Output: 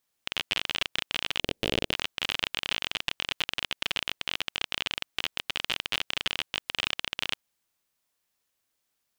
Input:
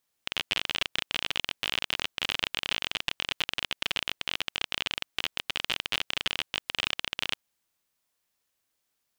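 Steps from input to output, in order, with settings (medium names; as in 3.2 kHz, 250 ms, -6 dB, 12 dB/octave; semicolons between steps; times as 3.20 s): 1.40–1.93 s: resonant low shelf 720 Hz +13.5 dB, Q 1.5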